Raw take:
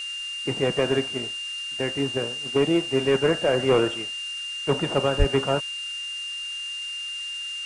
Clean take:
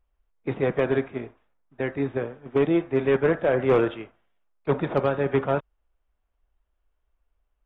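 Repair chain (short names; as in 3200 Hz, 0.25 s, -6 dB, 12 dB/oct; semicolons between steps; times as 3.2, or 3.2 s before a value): de-click; notch 2800 Hz, Q 30; 5.18–5.3 HPF 140 Hz 24 dB/oct; noise print and reduce 30 dB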